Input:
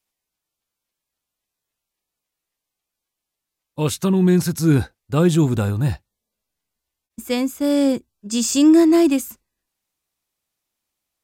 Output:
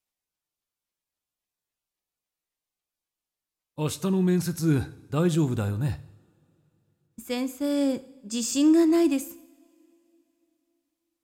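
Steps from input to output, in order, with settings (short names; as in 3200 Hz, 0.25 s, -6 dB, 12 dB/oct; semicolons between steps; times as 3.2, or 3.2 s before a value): two-slope reverb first 0.7 s, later 3.4 s, from -21 dB, DRR 13.5 dB; gain -7.5 dB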